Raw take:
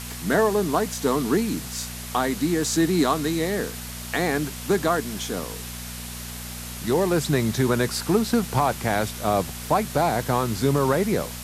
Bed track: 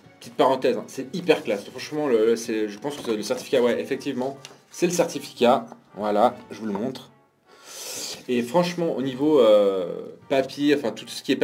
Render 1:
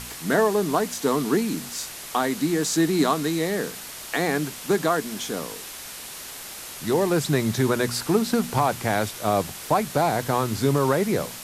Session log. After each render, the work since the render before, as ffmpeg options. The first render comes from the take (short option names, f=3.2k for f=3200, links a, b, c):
-af "bandreject=f=60:t=h:w=4,bandreject=f=120:t=h:w=4,bandreject=f=180:t=h:w=4,bandreject=f=240:t=h:w=4"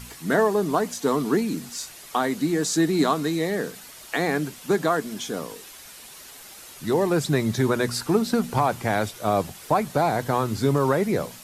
-af "afftdn=nr=8:nf=-38"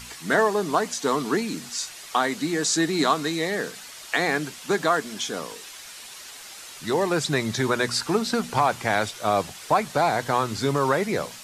-filter_complex "[0:a]acrossover=split=9200[a][b];[b]acompressor=threshold=-59dB:ratio=4:attack=1:release=60[c];[a][c]amix=inputs=2:normalize=0,tiltshelf=f=640:g=-5"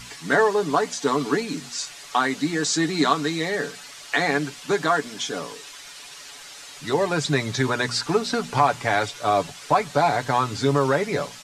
-filter_complex "[0:a]acrossover=split=8900[a][b];[b]acompressor=threshold=-59dB:ratio=4:attack=1:release=60[c];[a][c]amix=inputs=2:normalize=0,aecho=1:1:7:0.55"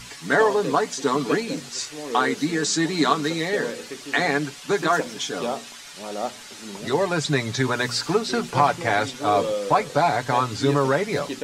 -filter_complex "[1:a]volume=-10dB[a];[0:a][a]amix=inputs=2:normalize=0"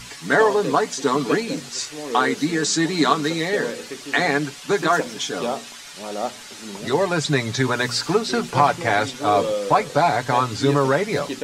-af "volume=2dB"